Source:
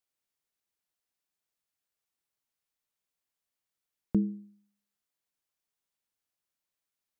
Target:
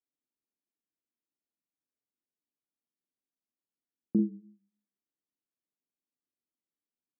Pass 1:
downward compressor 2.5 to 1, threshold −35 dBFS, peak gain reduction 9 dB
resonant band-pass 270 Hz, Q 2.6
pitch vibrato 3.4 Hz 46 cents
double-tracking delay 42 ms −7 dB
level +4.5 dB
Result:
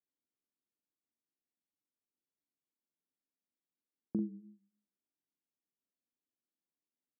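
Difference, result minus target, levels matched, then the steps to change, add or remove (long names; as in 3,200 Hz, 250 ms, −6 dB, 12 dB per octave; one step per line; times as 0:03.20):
downward compressor: peak gain reduction +9 dB
remove: downward compressor 2.5 to 1, threshold −35 dBFS, peak gain reduction 9 dB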